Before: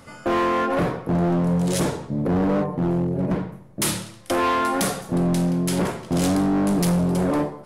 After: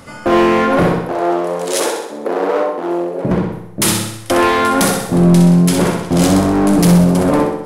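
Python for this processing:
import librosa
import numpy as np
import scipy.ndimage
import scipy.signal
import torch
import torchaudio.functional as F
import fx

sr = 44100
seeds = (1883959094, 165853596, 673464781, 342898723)

y = fx.highpass(x, sr, hz=370.0, slope=24, at=(1.02, 3.25))
y = fx.room_flutter(y, sr, wall_m=10.9, rt60_s=0.67)
y = y * librosa.db_to_amplitude(8.0)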